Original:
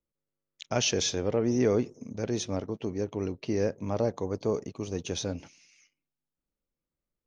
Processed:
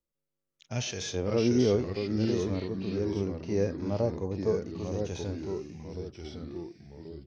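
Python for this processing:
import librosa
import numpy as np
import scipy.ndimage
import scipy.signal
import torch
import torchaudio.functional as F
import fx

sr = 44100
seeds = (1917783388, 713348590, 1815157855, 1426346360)

y = fx.echo_pitch(x, sr, ms=465, semitones=-2, count=3, db_per_echo=-6.0)
y = fx.hpss(y, sr, part='percussive', gain_db=-17)
y = F.gain(torch.from_numpy(y), 2.5).numpy()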